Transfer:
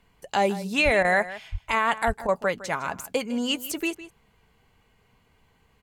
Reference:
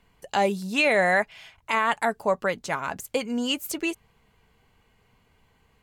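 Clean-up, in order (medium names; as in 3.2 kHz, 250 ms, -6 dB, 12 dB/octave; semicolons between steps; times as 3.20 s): 0.84–0.96 s: high-pass 140 Hz 24 dB/octave; 1.51–1.63 s: high-pass 140 Hz 24 dB/octave; 2.06–2.18 s: high-pass 140 Hz 24 dB/octave; interpolate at 1.03/2.27 s, 14 ms; inverse comb 158 ms -15.5 dB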